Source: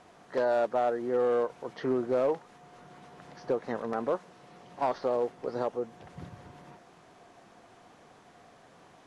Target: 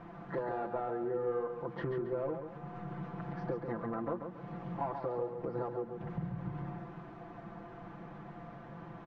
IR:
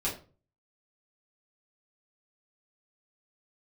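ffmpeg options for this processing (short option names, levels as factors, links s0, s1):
-filter_complex "[0:a]lowpass=1000,equalizer=f=550:t=o:w=1.7:g=-12.5,aecho=1:1:5.9:0.97,acompressor=threshold=0.00355:ratio=4,asplit=2[s0][s1];[s1]aecho=0:1:138|276|414|552:0.447|0.156|0.0547|0.0192[s2];[s0][s2]amix=inputs=2:normalize=0,volume=4.22"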